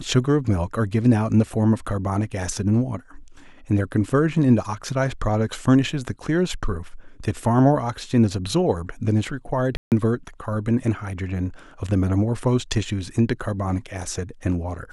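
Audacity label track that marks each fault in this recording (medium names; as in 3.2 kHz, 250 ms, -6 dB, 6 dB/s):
9.770000	9.920000	dropout 148 ms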